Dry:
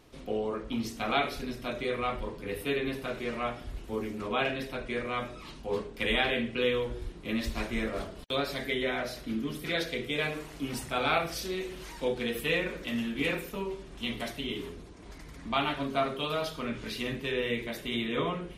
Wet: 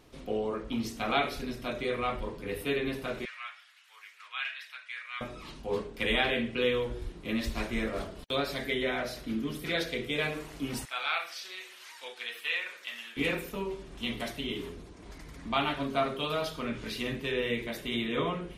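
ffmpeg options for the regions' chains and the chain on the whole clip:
ffmpeg -i in.wav -filter_complex "[0:a]asettb=1/sr,asplit=3[link_01][link_02][link_03];[link_01]atrim=end=3.254[link_04];[link_02]atrim=start=3.25:end=5.21,asetpts=PTS-STARTPTS,afade=type=in:duration=0.004:curve=qsin,afade=type=out:start_time=1.956:duration=0.004:curve=qsin,highpass=frequency=1500:width=0.5412,highpass=frequency=1500:width=1.3066,aemphasis=mode=reproduction:type=cd[link_05];[link_03]atrim=start=5.206[link_06];[link_04][link_05]acrossfade=duration=0.004:curve1=hsin:curve2=qsin[link_07];[link_07][link_06]acrossfade=duration=0.004:curve1=qsin:curve2=hsin,asettb=1/sr,asplit=3[link_08][link_09][link_10];[link_08]atrim=end=10.854[link_11];[link_09]atrim=start=10.85:end=13.17,asetpts=PTS-STARTPTS,afade=type=in:duration=0.004:curve=qsin,afade=type=out:start_time=2.316:duration=0.004:curve=qsin,acrossover=split=5200[link_12][link_13];[link_13]acompressor=threshold=-54dB:ratio=4:attack=1:release=60[link_14];[link_12][link_14]amix=inputs=2:normalize=0,highpass=1300[link_15];[link_10]atrim=start=13.166[link_16];[link_11][link_15]acrossfade=duration=0.004:curve1=hsin:curve2=qsin[link_17];[link_17][link_16]acrossfade=duration=0.004:curve1=qsin:curve2=hsin" out.wav

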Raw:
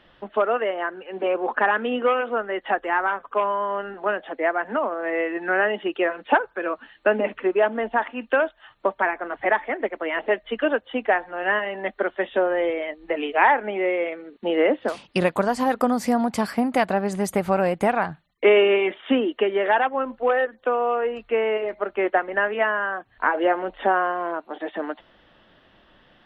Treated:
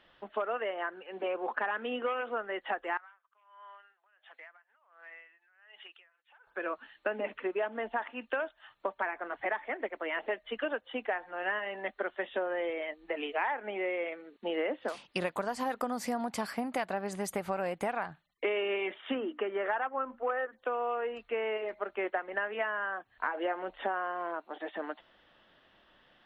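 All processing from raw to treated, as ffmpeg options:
ffmpeg -i in.wav -filter_complex "[0:a]asettb=1/sr,asplit=3[link_01][link_02][link_03];[link_01]atrim=end=2.974[link_04];[link_02]atrim=start=2.97:end=6.47,asetpts=PTS-STARTPTS,afade=type=in:duration=0.004:curve=qsin,afade=type=out:start_time=3.496:duration=0.004:curve=qsin,highpass=1400,acompressor=threshold=-39dB:ratio=10:attack=3.2:release=140:knee=1:detection=peak,aeval=exprs='val(0)*pow(10,-21*(0.5-0.5*cos(2*PI*1.4*n/s))/20)':channel_layout=same[link_05];[link_03]atrim=start=6.466[link_06];[link_04][link_05]acrossfade=duration=0.004:curve1=hsin:curve2=qsin[link_07];[link_07][link_06]acrossfade=duration=0.004:curve1=qsin:curve2=hsin,asettb=1/sr,asplit=3[link_08][link_09][link_10];[link_08]atrim=end=19.144[link_11];[link_09]atrim=start=19.14:end=20.53,asetpts=PTS-STARTPTS,afade=type=in:duration=0.004:curve=qsin,afade=type=out:start_time=1.386:duration=0.004:curve=qsin,lowpass=2200,equalizer=frequency=1300:width=3.1:gain=6,bandreject=frequency=60:width_type=h:width=6,bandreject=frequency=120:width_type=h:width=6,bandreject=frequency=180:width_type=h:width=6,bandreject=frequency=240:width_type=h:width=6,bandreject=frequency=300:width_type=h:width=6[link_12];[link_10]atrim=start=20.526[link_13];[link_11][link_12]acrossfade=duration=0.004:curve1=hsin:curve2=qsin[link_14];[link_14][link_13]acrossfade=duration=0.004:curve1=qsin:curve2=hsin,lowshelf=frequency=410:gain=-7.5,acompressor=threshold=-23dB:ratio=4,volume=-6dB" out.wav

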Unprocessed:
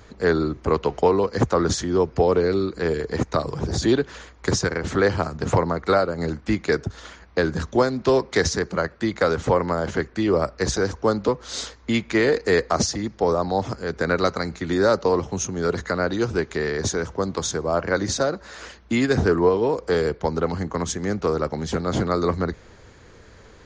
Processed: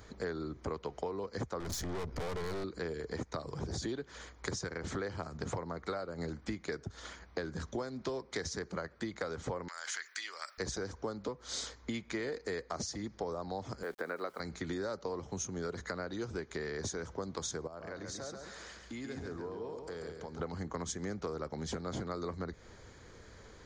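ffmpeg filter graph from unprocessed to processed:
ffmpeg -i in.wav -filter_complex "[0:a]asettb=1/sr,asplit=3[link_01][link_02][link_03];[link_01]atrim=end=1.604[link_04];[link_02]atrim=start=1.6:end=2.64,asetpts=PTS-STARTPTS,afade=type=in:duration=0.004:curve=qsin,afade=type=out:start_time=1.036:duration=0.004:curve=qsin,lowshelf=frequency=110:gain=11,acontrast=76,aeval=exprs='(tanh(14.1*val(0)+0.55)-tanh(0.55))/14.1':channel_layout=same[link_05];[link_03]atrim=start=2.636[link_06];[link_04][link_05]acrossfade=duration=0.004:curve1=hsin:curve2=qsin[link_07];[link_07][link_06]acrossfade=duration=0.004:curve1=qsin:curve2=hsin,asettb=1/sr,asplit=3[link_08][link_09][link_10];[link_08]atrim=end=9.684[link_11];[link_09]atrim=start=9.68:end=10.58,asetpts=PTS-STARTPTS,afade=type=in:duration=0.004:curve=qsin,afade=type=out:start_time=0.896:duration=0.004:curve=qsin,acompressor=threshold=-24dB:ratio=6:attack=3.2:release=140:knee=1:detection=peak,highpass=frequency=1700:width_type=q:width=1.6,aemphasis=mode=production:type=75kf[link_12];[link_10]atrim=start=10.576[link_13];[link_11][link_12]acrossfade=duration=0.004:curve1=hsin:curve2=qsin[link_14];[link_14][link_13]acrossfade=duration=0.004:curve1=qsin:curve2=hsin,asettb=1/sr,asplit=3[link_15][link_16][link_17];[link_15]atrim=end=13.834[link_18];[link_16]atrim=start=13.83:end=14.4,asetpts=PTS-STARTPTS,afade=type=in:duration=0.004:curve=qsin,afade=type=out:start_time=0.566:duration=0.004:curve=qsin,highpass=320,lowpass=2500,aeval=exprs='val(0)*gte(abs(val(0)),0.00596)':channel_layout=same[link_19];[link_17]atrim=start=14.396[link_20];[link_18][link_19]acrossfade=duration=0.004:curve1=hsin:curve2=qsin[link_21];[link_21][link_20]acrossfade=duration=0.004:curve1=qsin:curve2=hsin,asettb=1/sr,asplit=3[link_22][link_23][link_24];[link_22]atrim=end=17.674[link_25];[link_23]atrim=start=17.67:end=20.4,asetpts=PTS-STARTPTS,afade=type=in:duration=0.004:curve=qsin,afade=type=out:start_time=2.726:duration=0.004:curve=qsin,acompressor=threshold=-42dB:ratio=2.5:attack=3.2:release=140:knee=1:detection=peak,aecho=1:1:137|274|411|548:0.562|0.186|0.0612|0.0202,atrim=end_sample=120393[link_26];[link_24]atrim=start=20.396[link_27];[link_25][link_26]acrossfade=duration=0.004:curve1=hsin:curve2=qsin[link_28];[link_28][link_27]acrossfade=duration=0.004:curve1=qsin:curve2=hsin,highshelf=frequency=7200:gain=6.5,bandreject=frequency=2700:width=12,acompressor=threshold=-29dB:ratio=6,volume=-6.5dB" out.wav

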